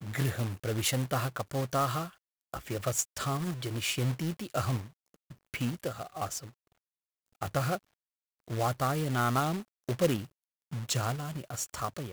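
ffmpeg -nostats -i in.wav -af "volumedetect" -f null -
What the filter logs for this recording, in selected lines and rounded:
mean_volume: -33.4 dB
max_volume: -12.6 dB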